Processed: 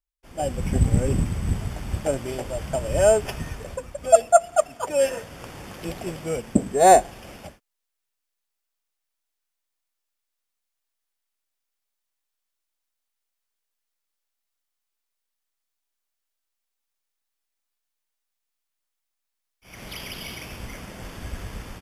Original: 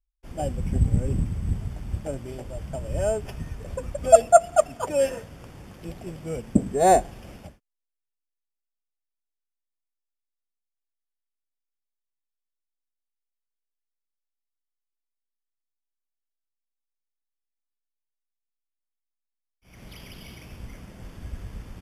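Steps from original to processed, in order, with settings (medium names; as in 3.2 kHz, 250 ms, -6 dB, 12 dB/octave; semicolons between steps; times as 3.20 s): bass shelf 320 Hz -10 dB; level rider gain up to 12 dB; trim -1 dB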